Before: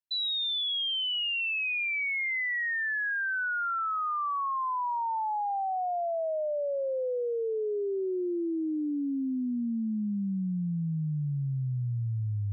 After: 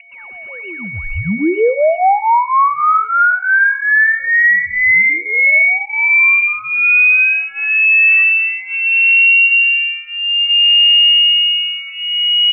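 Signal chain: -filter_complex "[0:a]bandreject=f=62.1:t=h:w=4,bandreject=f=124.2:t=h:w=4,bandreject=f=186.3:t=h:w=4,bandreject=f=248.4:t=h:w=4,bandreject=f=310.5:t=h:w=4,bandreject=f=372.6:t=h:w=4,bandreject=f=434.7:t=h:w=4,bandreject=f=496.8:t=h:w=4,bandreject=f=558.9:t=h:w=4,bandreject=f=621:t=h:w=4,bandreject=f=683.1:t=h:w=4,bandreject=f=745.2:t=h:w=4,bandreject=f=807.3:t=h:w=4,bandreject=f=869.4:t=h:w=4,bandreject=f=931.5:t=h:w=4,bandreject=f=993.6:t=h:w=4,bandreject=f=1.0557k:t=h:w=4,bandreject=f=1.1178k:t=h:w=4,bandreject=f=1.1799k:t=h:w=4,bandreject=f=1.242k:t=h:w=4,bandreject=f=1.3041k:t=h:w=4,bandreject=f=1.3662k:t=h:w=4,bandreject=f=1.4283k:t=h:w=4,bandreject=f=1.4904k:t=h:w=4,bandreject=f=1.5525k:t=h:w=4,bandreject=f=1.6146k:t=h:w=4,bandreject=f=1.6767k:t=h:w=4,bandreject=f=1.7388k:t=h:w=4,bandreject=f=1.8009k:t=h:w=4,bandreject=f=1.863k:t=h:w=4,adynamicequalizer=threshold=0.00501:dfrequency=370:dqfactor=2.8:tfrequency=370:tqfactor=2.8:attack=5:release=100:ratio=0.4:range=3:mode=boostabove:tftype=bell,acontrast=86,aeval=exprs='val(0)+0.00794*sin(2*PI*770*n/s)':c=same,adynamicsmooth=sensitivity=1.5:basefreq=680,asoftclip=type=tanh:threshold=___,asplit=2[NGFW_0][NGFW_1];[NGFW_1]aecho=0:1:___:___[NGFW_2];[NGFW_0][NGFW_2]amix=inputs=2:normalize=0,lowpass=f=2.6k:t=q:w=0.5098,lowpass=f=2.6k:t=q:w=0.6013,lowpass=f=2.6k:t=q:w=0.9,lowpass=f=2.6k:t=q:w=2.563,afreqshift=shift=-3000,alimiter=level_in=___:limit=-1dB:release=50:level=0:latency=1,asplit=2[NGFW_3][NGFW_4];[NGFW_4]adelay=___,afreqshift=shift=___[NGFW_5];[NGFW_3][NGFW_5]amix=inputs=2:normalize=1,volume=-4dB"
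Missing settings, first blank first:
-17dB, 94, 0.15, 24.5dB, 5.2, -0.29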